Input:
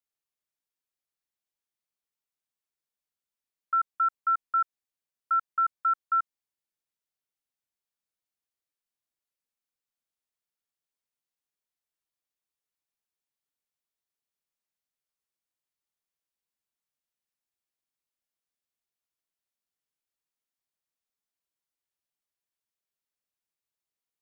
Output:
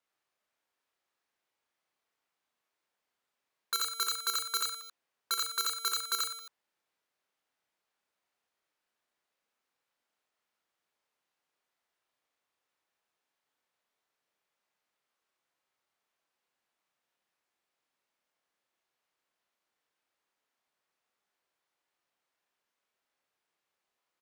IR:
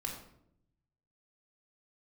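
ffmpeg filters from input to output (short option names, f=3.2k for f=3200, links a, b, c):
-filter_complex "[0:a]asplit=2[a][b];[b]highpass=f=720:p=1,volume=21dB,asoftclip=type=tanh:threshold=-19.5dB[c];[a][c]amix=inputs=2:normalize=0,lowpass=f=1.2k:p=1,volume=-6dB,aeval=exprs='(mod(17.8*val(0)+1,2)-1)/17.8':c=same,aecho=1:1:30|69|119.7|185.6|271.3:0.631|0.398|0.251|0.158|0.1"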